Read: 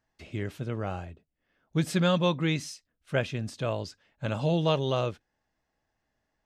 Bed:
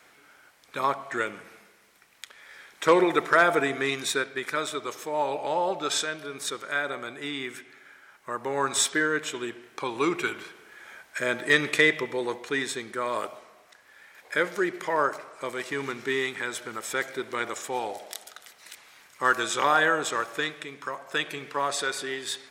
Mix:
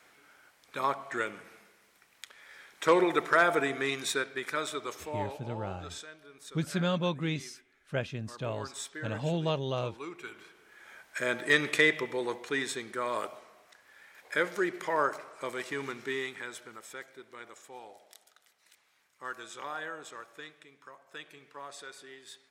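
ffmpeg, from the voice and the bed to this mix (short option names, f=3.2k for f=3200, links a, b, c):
-filter_complex "[0:a]adelay=4800,volume=-5dB[a];[1:a]volume=9dB,afade=t=out:st=4.93:d=0.48:silence=0.237137,afade=t=in:st=10.2:d=0.98:silence=0.223872,afade=t=out:st=15.52:d=1.56:silence=0.211349[b];[a][b]amix=inputs=2:normalize=0"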